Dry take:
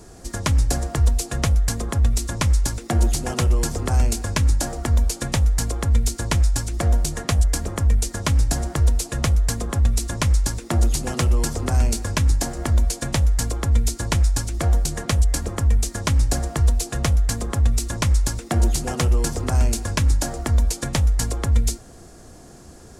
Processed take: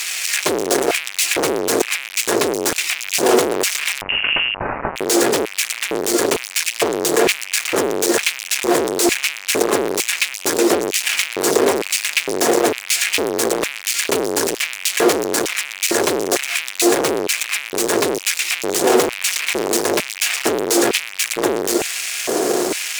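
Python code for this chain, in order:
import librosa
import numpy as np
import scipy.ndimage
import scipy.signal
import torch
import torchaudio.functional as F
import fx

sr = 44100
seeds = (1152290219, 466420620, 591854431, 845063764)

y = fx.fuzz(x, sr, gain_db=48.0, gate_db=-48.0)
y = fx.filter_lfo_highpass(y, sr, shape='square', hz=1.1, low_hz=400.0, high_hz=2400.0, q=3.6)
y = fx.freq_invert(y, sr, carrier_hz=3200, at=(4.01, 4.96))
y = F.gain(torch.from_numpy(y), -1.5).numpy()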